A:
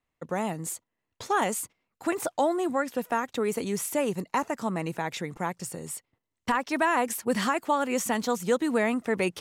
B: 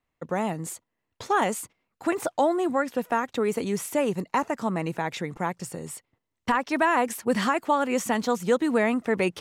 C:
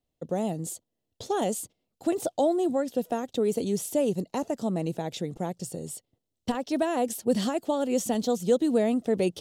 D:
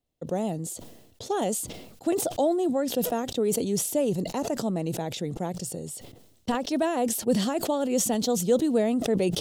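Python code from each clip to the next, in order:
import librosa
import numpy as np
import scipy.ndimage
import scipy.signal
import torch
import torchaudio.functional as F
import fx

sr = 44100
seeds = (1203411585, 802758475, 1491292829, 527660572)

y1 = fx.high_shelf(x, sr, hz=5400.0, db=-6.5)
y1 = y1 * librosa.db_to_amplitude(2.5)
y2 = fx.band_shelf(y1, sr, hz=1500.0, db=-14.5, octaves=1.7)
y3 = fx.sustainer(y2, sr, db_per_s=55.0)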